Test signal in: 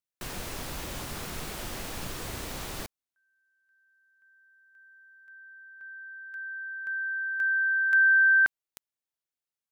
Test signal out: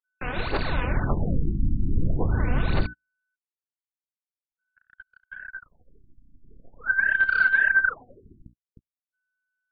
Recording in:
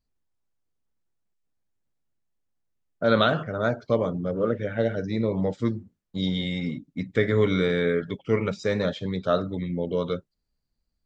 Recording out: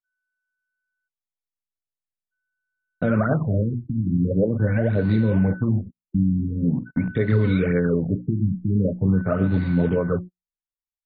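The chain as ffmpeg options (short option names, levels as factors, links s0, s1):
-filter_complex "[0:a]acrossover=split=270[s0][s1];[s0]dynaudnorm=f=160:g=13:m=4.47[s2];[s1]aphaser=in_gain=1:out_gain=1:delay=4.1:decay=0.75:speed=1.8:type=sinusoidal[s3];[s2][s3]amix=inputs=2:normalize=0,lowshelf=f=100:g=5.5,asplit=2[s4][s5];[s5]acrusher=bits=5:dc=4:mix=0:aa=0.000001,volume=0.355[s6];[s4][s6]amix=inputs=2:normalize=0,acompressor=threshold=0.0631:ratio=2.5:attack=82:release=319:knee=1:detection=rms,alimiter=limit=0.168:level=0:latency=1:release=98,equalizer=f=3200:t=o:w=0.22:g=-9,bandreject=f=60:t=h:w=6,bandreject=f=120:t=h:w=6,bandreject=f=180:t=h:w=6,bandreject=f=240:t=h:w=6,bandreject=f=300:t=h:w=6,bandreject=f=360:t=h:w=6,aeval=exprs='val(0)+0.00631*sin(2*PI*1500*n/s)':c=same,agate=range=0.01:threshold=0.00794:ratio=16:release=70:detection=rms,afftfilt=real='re*lt(b*sr/1024,330*pow(4700/330,0.5+0.5*sin(2*PI*0.44*pts/sr)))':imag='im*lt(b*sr/1024,330*pow(4700/330,0.5+0.5*sin(2*PI*0.44*pts/sr)))':win_size=1024:overlap=0.75,volume=1.68"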